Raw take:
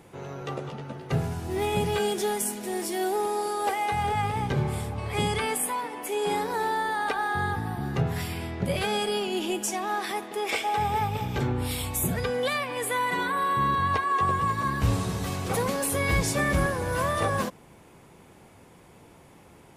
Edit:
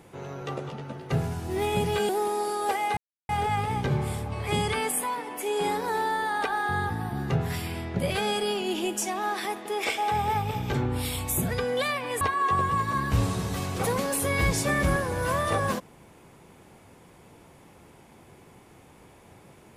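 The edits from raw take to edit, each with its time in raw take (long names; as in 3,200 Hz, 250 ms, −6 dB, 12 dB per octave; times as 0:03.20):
0:02.09–0:03.07: remove
0:03.95: splice in silence 0.32 s
0:12.87–0:13.91: remove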